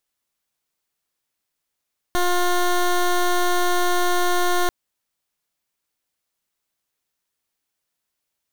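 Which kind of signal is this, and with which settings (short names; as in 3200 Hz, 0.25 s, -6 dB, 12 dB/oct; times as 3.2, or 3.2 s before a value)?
pulse 355 Hz, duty 14% -18.5 dBFS 2.54 s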